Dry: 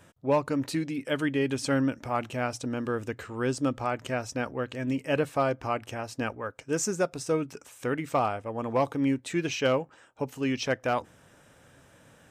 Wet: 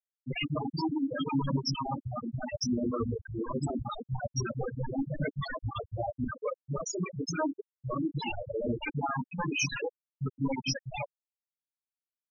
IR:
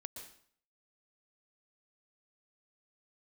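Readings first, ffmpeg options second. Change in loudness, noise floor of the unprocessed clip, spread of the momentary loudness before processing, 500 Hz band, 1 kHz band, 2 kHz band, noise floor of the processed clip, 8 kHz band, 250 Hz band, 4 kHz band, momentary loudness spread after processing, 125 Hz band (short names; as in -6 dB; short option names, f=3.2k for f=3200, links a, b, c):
-4.0 dB, -58 dBFS, 7 LU, -7.5 dB, -5.0 dB, -4.5 dB, under -85 dBFS, -2.5 dB, -3.5 dB, +0.5 dB, 7 LU, +0.5 dB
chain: -filter_complex "[0:a]acrossover=split=310|3800[a][b][c];[a]acrusher=bits=3:mode=log:mix=0:aa=0.000001[d];[b]asoftclip=type=tanh:threshold=-22dB[e];[d][e][c]amix=inputs=3:normalize=0,acrossover=split=200|3400[f][g][h];[g]adelay=40[i];[h]adelay=80[j];[f][i][j]amix=inputs=3:normalize=0,acontrast=34,aeval=exprs='0.0501*(abs(mod(val(0)/0.0501+3,4)-2)-1)':c=same,adynamicequalizer=threshold=0.00316:dfrequency=4700:dqfactor=1.7:tfrequency=4700:tqfactor=1.7:attack=5:release=100:ratio=0.375:range=2.5:mode=boostabove:tftype=bell,aeval=exprs='val(0)+0.00562*(sin(2*PI*60*n/s)+sin(2*PI*2*60*n/s)/2+sin(2*PI*3*60*n/s)/3+sin(2*PI*4*60*n/s)/4+sin(2*PI*5*60*n/s)/5)':c=same,flanger=delay=20:depth=2.4:speed=0.34,highshelf=f=2.9k:g=5,asplit=2[k][l];[1:a]atrim=start_sample=2205,lowpass=2.9k,adelay=120[m];[l][m]afir=irnorm=-1:irlink=0,volume=-5dB[n];[k][n]amix=inputs=2:normalize=0,afftfilt=real='re*gte(hypot(re,im),0.0891)':imag='im*gte(hypot(re,im),0.0891)':win_size=1024:overlap=0.75,volume=6.5dB"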